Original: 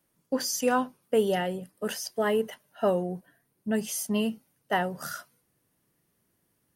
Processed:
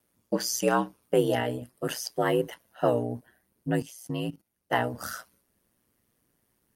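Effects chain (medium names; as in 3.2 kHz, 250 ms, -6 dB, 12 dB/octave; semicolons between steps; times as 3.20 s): ring modulator 60 Hz; 3.82–4.73 s: level held to a coarse grid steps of 17 dB; trim +3.5 dB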